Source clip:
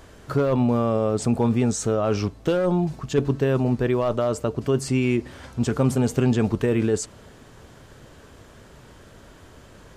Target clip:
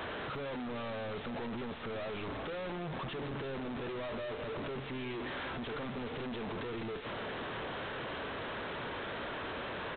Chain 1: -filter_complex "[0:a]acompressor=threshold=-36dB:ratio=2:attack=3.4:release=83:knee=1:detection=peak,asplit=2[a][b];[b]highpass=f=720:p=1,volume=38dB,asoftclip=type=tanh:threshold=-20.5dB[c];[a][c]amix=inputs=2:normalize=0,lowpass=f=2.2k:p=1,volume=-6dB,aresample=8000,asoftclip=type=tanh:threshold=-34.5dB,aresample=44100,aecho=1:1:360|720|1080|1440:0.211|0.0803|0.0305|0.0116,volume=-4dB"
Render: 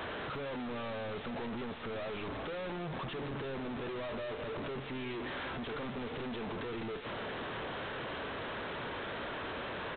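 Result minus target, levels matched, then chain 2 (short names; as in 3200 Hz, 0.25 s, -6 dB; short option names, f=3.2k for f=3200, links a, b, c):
compressor: peak gain reduction +5 dB
-filter_complex "[0:a]acompressor=threshold=-26dB:ratio=2:attack=3.4:release=83:knee=1:detection=peak,asplit=2[a][b];[b]highpass=f=720:p=1,volume=38dB,asoftclip=type=tanh:threshold=-20.5dB[c];[a][c]amix=inputs=2:normalize=0,lowpass=f=2.2k:p=1,volume=-6dB,aresample=8000,asoftclip=type=tanh:threshold=-34.5dB,aresample=44100,aecho=1:1:360|720|1080|1440:0.211|0.0803|0.0305|0.0116,volume=-4dB"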